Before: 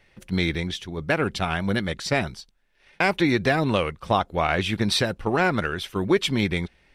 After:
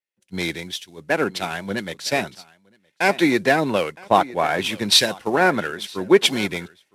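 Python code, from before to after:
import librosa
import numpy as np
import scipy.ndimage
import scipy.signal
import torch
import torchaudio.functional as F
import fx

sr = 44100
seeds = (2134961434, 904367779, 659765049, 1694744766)

p1 = fx.cvsd(x, sr, bps=64000)
p2 = scipy.signal.sosfilt(scipy.signal.butter(2, 220.0, 'highpass', fs=sr, output='sos'), p1)
p3 = fx.notch(p2, sr, hz=1200.0, q=9.3)
p4 = p3 + fx.echo_single(p3, sr, ms=967, db=-16.0, dry=0)
p5 = fx.band_widen(p4, sr, depth_pct=100)
y = F.gain(torch.from_numpy(p5), 3.5).numpy()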